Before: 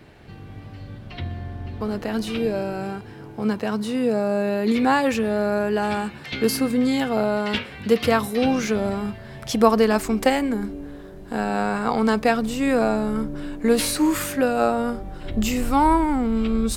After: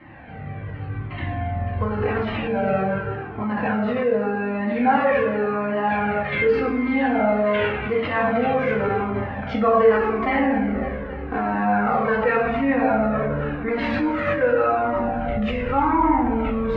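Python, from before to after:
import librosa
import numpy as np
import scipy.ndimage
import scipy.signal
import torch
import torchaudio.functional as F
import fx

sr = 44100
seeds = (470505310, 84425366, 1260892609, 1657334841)

p1 = scipy.signal.sosfilt(scipy.signal.butter(4, 2300.0, 'lowpass', fs=sr, output='sos'), x)
p2 = fx.low_shelf(p1, sr, hz=440.0, db=-6.0)
p3 = fx.echo_feedback(p2, sr, ms=277, feedback_pct=58, wet_db=-17)
p4 = fx.room_shoebox(p3, sr, seeds[0], volume_m3=380.0, walls='mixed', distance_m=2.1)
p5 = fx.over_compress(p4, sr, threshold_db=-24.0, ratio=-1.0)
p6 = p4 + F.gain(torch.from_numpy(p5), -1.0).numpy()
p7 = scipy.signal.sosfilt(scipy.signal.butter(2, 56.0, 'highpass', fs=sr, output='sos'), p6)
p8 = fx.peak_eq(p7, sr, hz=200.0, db=-3.0, octaves=0.77)
y = fx.comb_cascade(p8, sr, direction='falling', hz=0.87)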